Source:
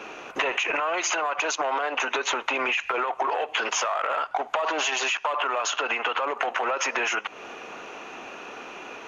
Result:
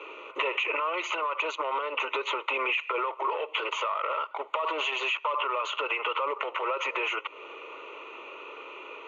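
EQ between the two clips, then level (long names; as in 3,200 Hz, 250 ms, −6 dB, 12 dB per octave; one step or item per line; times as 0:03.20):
high-pass filter 300 Hz 12 dB per octave
high-frequency loss of the air 120 metres
phaser with its sweep stopped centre 1,100 Hz, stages 8
0.0 dB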